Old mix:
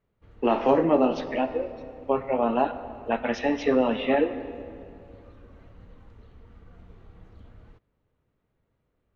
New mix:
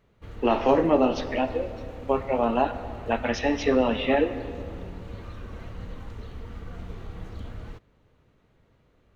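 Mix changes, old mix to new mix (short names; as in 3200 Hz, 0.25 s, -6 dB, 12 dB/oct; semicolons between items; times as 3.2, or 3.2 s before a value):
background +11.5 dB; master: add high shelf 4200 Hz +9.5 dB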